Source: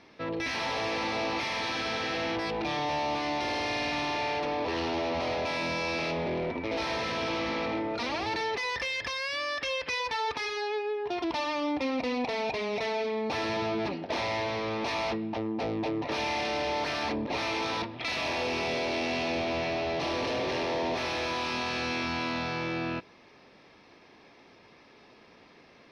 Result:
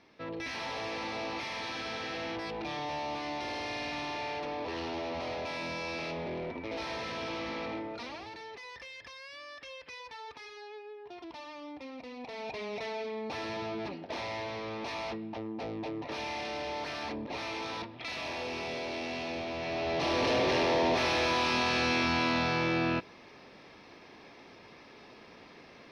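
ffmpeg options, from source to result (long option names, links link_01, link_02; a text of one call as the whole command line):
ffmpeg -i in.wav -af "volume=11.5dB,afade=type=out:start_time=7.73:duration=0.6:silence=0.375837,afade=type=in:start_time=12.16:duration=0.46:silence=0.398107,afade=type=in:start_time=19.58:duration=0.74:silence=0.334965" out.wav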